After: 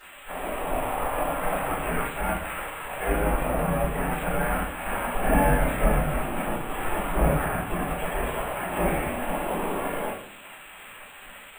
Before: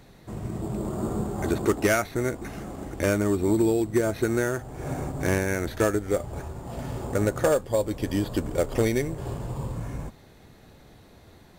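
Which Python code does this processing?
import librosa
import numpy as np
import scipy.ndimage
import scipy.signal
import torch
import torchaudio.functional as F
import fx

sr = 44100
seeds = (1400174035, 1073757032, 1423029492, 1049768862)

y = fx.delta_mod(x, sr, bps=16000, step_db=-43.5)
y = fx.spec_gate(y, sr, threshold_db=-15, keep='weak')
y = fx.low_shelf(y, sr, hz=190.0, db=8.5, at=(5.15, 7.23))
y = fx.room_shoebox(y, sr, seeds[0], volume_m3=70.0, walls='mixed', distance_m=3.9)
y = np.repeat(scipy.signal.resample_poly(y, 1, 4), 4)[:len(y)]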